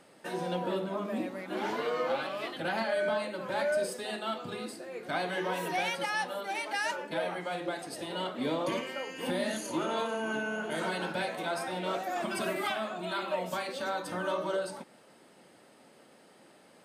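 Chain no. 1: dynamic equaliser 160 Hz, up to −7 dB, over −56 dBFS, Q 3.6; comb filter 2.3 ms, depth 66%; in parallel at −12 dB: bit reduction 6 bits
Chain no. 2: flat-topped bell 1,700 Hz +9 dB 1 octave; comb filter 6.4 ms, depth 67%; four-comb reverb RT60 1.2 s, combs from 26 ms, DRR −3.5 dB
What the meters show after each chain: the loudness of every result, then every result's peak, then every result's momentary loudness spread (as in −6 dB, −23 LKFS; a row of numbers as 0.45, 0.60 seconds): −30.5, −23.5 LKFS; −15.5, −5.5 dBFS; 6, 7 LU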